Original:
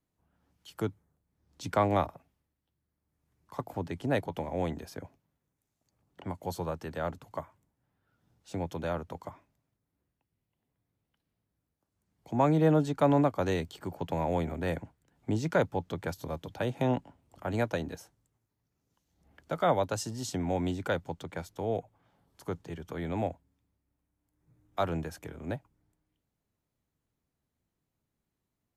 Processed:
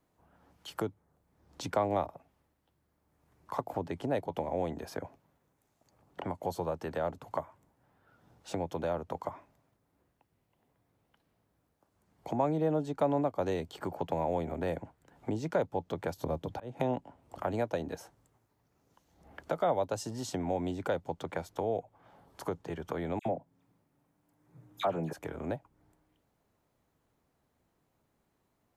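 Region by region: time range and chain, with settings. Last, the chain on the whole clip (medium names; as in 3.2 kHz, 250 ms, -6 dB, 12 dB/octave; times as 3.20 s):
16.24–16.80 s: bass shelf 450 Hz +7.5 dB + slow attack 753 ms
23.19–25.13 s: resonant low shelf 100 Hz -8 dB, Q 3 + phase dispersion lows, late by 67 ms, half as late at 2.1 kHz
whole clip: dynamic bell 1.4 kHz, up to -6 dB, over -45 dBFS, Q 0.94; compression 2:1, threshold -49 dBFS; peaking EQ 760 Hz +9 dB 2.7 oct; trim +4.5 dB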